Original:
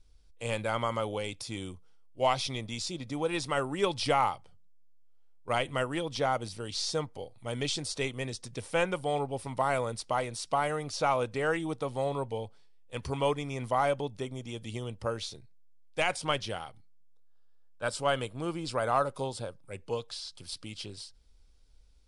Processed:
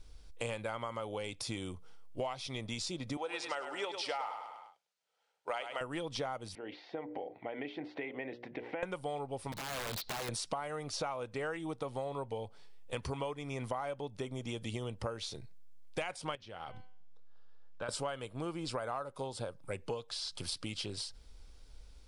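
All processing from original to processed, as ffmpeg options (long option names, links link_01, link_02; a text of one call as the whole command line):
ffmpeg -i in.wav -filter_complex "[0:a]asettb=1/sr,asplit=3[link_01][link_02][link_03];[link_01]atrim=end=3.174[link_04];[link_02]atrim=start=3.17:end=5.81,asetpts=PTS-STARTPTS,afade=type=in:duration=0.004:curve=qsin,afade=type=out:start_time=2.636:duration=0.004:curve=qsin,highpass=560,lowpass=7400,bandreject=frequency=1100:width=9,aecho=1:1:101|202|303|404:0.355|0.121|0.041|0.0139,atrim=end_sample=116424[link_05];[link_03]atrim=start=5.806[link_06];[link_04][link_05]acrossfade=duration=0.004:curve1=hsin:curve2=qsin[link_07];[link_07][link_06]acrossfade=duration=0.004:curve1=qsin:curve2=hsin,asettb=1/sr,asplit=3[link_08][link_09][link_10];[link_08]atrim=end=6.554[link_11];[link_09]atrim=start=6.55:end=8.83,asetpts=PTS-STARTPTS,afade=type=in:duration=0.004:curve=qsin,afade=type=out:start_time=2.276:duration=0.004:curve=qsin,bandreject=frequency=60:width_type=h:width=6,bandreject=frequency=120:width_type=h:width=6,bandreject=frequency=180:width_type=h:width=6,bandreject=frequency=240:width_type=h:width=6,bandreject=frequency=300:width_type=h:width=6,bandreject=frequency=360:width_type=h:width=6,bandreject=frequency=420:width_type=h:width=6,bandreject=frequency=480:width_type=h:width=6,bandreject=frequency=540:width_type=h:width=6,bandreject=frequency=600:width_type=h:width=6,acompressor=threshold=-45dB:ratio=4:attack=3.2:release=140:knee=1:detection=peak,highpass=270,equalizer=frequency=300:width_type=q:width=4:gain=8,equalizer=frequency=750:width_type=q:width=4:gain=7,equalizer=frequency=1200:width_type=q:width=4:gain=-10,equalizer=frequency=2000:width_type=q:width=4:gain=7,lowpass=frequency=2500:width=0.5412,lowpass=frequency=2500:width=1.3066[link_12];[link_10]atrim=start=8.826[link_13];[link_11][link_12]acrossfade=duration=0.004:curve1=hsin:curve2=qsin[link_14];[link_14][link_13]acrossfade=duration=0.004:curve1=qsin:curve2=hsin,asettb=1/sr,asplit=3[link_15][link_16][link_17];[link_15]atrim=end=9.524[link_18];[link_16]atrim=start=9.52:end=10.29,asetpts=PTS-STARTPTS,afade=type=in:duration=0.004:curve=qsin,afade=type=out:start_time=0.766:duration=0.004:curve=qsin,lowpass=frequency=4100:width_type=q:width=8.1,acompressor=threshold=-38dB:ratio=10:attack=3.2:release=140:knee=1:detection=peak,aeval=exprs='(mod(75*val(0)+1,2)-1)/75':channel_layout=same[link_19];[link_17]atrim=start=10.286[link_20];[link_18][link_19]acrossfade=duration=0.004:curve1=hsin:curve2=qsin[link_21];[link_21][link_20]acrossfade=duration=0.004:curve1=qsin:curve2=hsin,asettb=1/sr,asplit=3[link_22][link_23][link_24];[link_22]atrim=end=16.354[link_25];[link_23]atrim=start=16.35:end=17.89,asetpts=PTS-STARTPTS,afade=type=in:duration=0.004:curve=qsin,afade=type=out:start_time=1.536:duration=0.004:curve=qsin,lowpass=5000,bandreject=frequency=253.8:width_type=h:width=4,bandreject=frequency=507.6:width_type=h:width=4,bandreject=frequency=761.4:width_type=h:width=4,bandreject=frequency=1015.2:width_type=h:width=4,bandreject=frequency=1269:width_type=h:width=4,bandreject=frequency=1522.8:width_type=h:width=4,bandreject=frequency=1776.6:width_type=h:width=4,bandreject=frequency=2030.4:width_type=h:width=4,bandreject=frequency=2284.2:width_type=h:width=4,bandreject=frequency=2538:width_type=h:width=4,bandreject=frequency=2791.8:width_type=h:width=4,bandreject=frequency=3045.6:width_type=h:width=4,bandreject=frequency=3299.4:width_type=h:width=4,acompressor=threshold=-48dB:ratio=2.5:attack=3.2:release=140:knee=1:detection=peak[link_26];[link_24]atrim=start=17.886[link_27];[link_25][link_26]acrossfade=duration=0.004:curve1=hsin:curve2=qsin[link_28];[link_28][link_27]acrossfade=duration=0.004:curve1=qsin:curve2=hsin,equalizer=frequency=930:width=0.37:gain=3.5,acompressor=threshold=-43dB:ratio=8,volume=7dB" out.wav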